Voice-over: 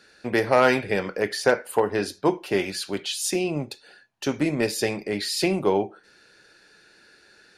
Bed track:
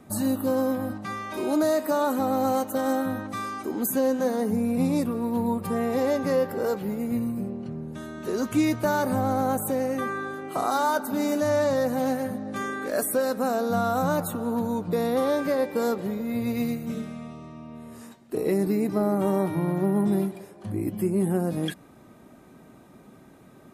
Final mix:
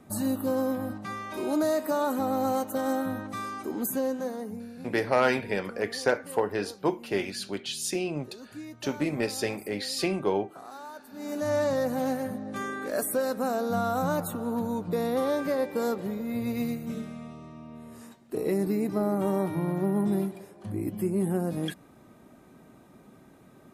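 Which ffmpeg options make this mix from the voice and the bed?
-filter_complex "[0:a]adelay=4600,volume=-5dB[a];[1:a]volume=13dB,afade=t=out:st=3.78:d=0.95:silence=0.158489,afade=t=in:st=11.13:d=0.42:silence=0.158489[b];[a][b]amix=inputs=2:normalize=0"

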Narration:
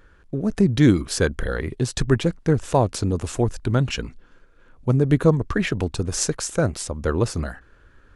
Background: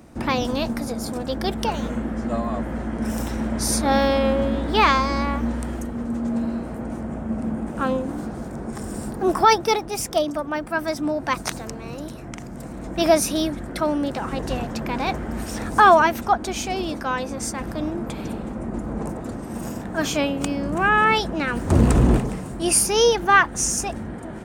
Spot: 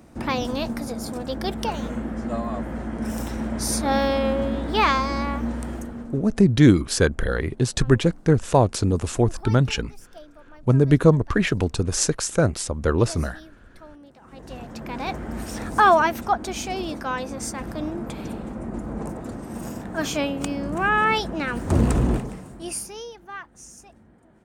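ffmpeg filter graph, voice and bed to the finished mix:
-filter_complex "[0:a]adelay=5800,volume=1.5dB[a];[1:a]volume=18.5dB,afade=t=out:st=5.76:d=0.56:silence=0.0891251,afade=t=in:st=14.21:d=1.12:silence=0.0891251,afade=t=out:st=21.75:d=1.31:silence=0.105925[b];[a][b]amix=inputs=2:normalize=0"

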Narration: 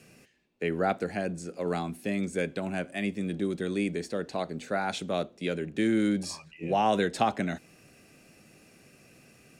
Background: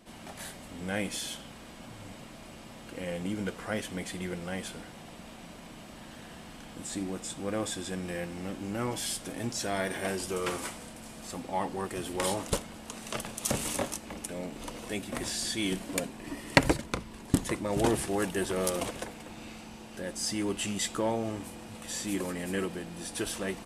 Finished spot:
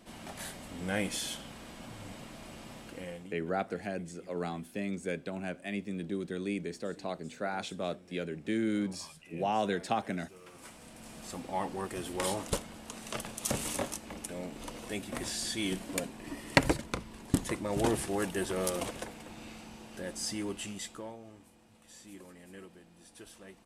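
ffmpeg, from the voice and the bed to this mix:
-filter_complex "[0:a]adelay=2700,volume=-5.5dB[a];[1:a]volume=19dB,afade=t=out:st=2.72:d=0.63:silence=0.0841395,afade=t=in:st=10.52:d=0.64:silence=0.112202,afade=t=out:st=20.12:d=1.05:silence=0.177828[b];[a][b]amix=inputs=2:normalize=0"

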